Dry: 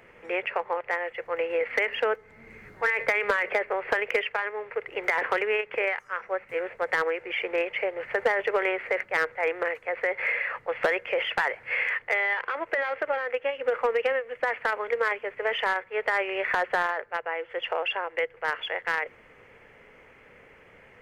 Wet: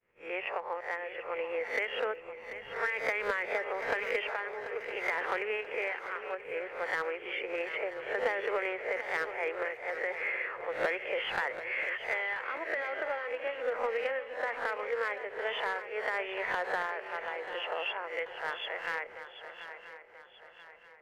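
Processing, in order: spectral swells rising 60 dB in 0.40 s; expander -41 dBFS; on a send: swung echo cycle 0.984 s, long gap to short 3:1, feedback 41%, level -11.5 dB; on the sum: ending taper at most 260 dB/s; gain -8.5 dB

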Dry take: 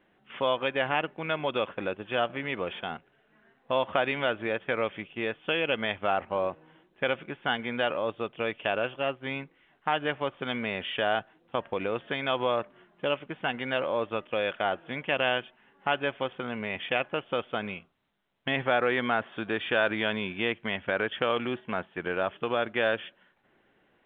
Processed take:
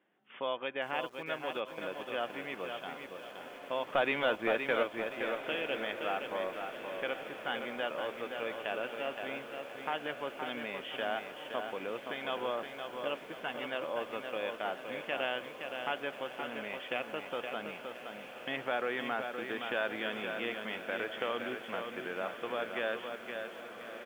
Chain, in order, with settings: HPF 210 Hz 12 dB/oct; 3.92–4.83 sample leveller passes 2; on a send: diffused feedback echo 1.431 s, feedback 67%, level -11.5 dB; on the sum: downsampling 8000 Hz; lo-fi delay 0.519 s, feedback 35%, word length 8-bit, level -6 dB; gain -8.5 dB

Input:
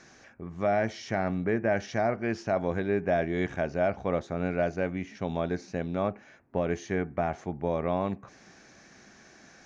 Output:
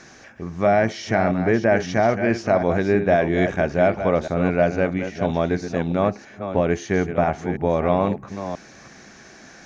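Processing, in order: reverse delay 0.329 s, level -9 dB; gain +8.5 dB

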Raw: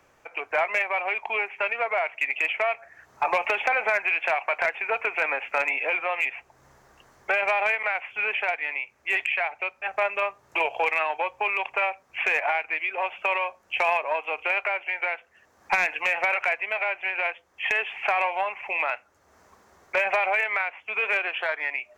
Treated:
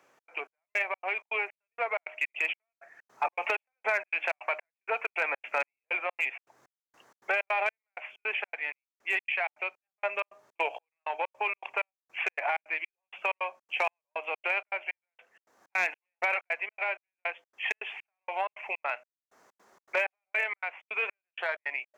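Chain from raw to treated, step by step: HPF 230 Hz 12 dB/oct; de-hum 309.2 Hz, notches 2; step gate "xx.xx...xx." 160 bpm -60 dB; gain -4 dB

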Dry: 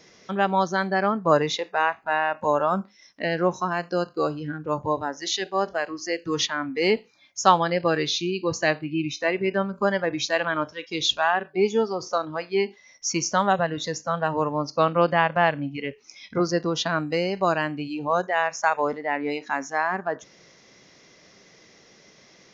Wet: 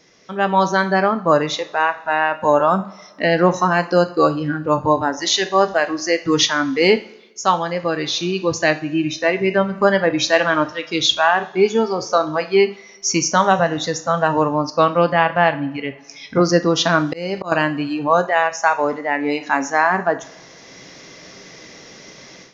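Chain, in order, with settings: two-slope reverb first 0.42 s, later 1.8 s, from -18 dB, DRR 9.5 dB; 16.97–17.52 auto swell 0.273 s; AGC gain up to 13.5 dB; gain -1 dB

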